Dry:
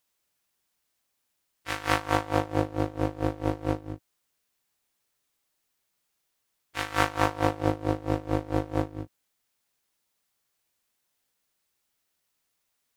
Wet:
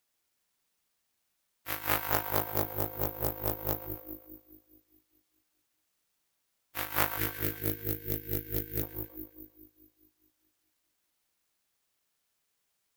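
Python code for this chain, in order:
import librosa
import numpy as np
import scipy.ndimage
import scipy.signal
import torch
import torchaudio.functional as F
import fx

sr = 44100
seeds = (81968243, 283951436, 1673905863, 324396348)

p1 = fx.spec_box(x, sr, start_s=7.12, length_s=1.71, low_hz=490.0, high_hz=1500.0, gain_db=-28)
p2 = p1 + fx.echo_split(p1, sr, split_hz=450.0, low_ms=209, high_ms=133, feedback_pct=52, wet_db=-10.0, dry=0)
p3 = (np.kron(p2[::3], np.eye(3)[0]) * 3)[:len(p2)]
p4 = fx.doppler_dist(p3, sr, depth_ms=0.49)
y = p4 * librosa.db_to_amplitude(-6.5)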